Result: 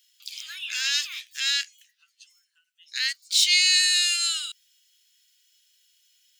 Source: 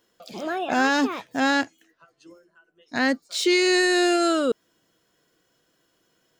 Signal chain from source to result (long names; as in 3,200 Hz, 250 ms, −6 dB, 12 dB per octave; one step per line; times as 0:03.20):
inverse Chebyshev high-pass filter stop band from 760 Hz, stop band 60 dB
level +8 dB